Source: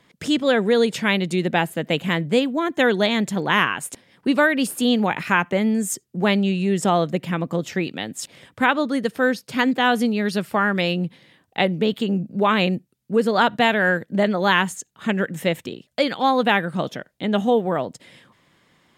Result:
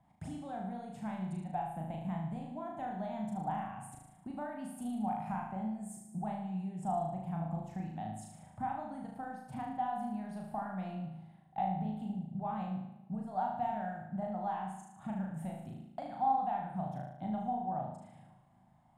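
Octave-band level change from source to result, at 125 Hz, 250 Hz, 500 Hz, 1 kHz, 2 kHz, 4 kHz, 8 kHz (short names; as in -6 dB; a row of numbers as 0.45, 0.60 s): -13.0 dB, -17.0 dB, -23.0 dB, -12.0 dB, -31.5 dB, under -35 dB, -23.5 dB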